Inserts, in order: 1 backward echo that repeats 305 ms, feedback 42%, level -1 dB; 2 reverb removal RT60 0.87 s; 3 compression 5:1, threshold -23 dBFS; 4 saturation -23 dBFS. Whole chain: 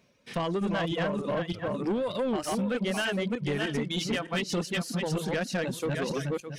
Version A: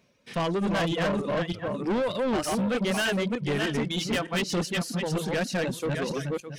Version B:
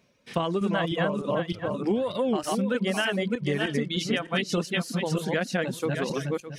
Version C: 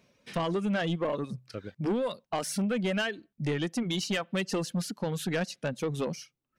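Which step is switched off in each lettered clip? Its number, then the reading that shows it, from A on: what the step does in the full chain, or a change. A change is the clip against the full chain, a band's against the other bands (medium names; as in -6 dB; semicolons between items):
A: 3, mean gain reduction 4.0 dB; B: 4, distortion -14 dB; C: 1, 8 kHz band +2.5 dB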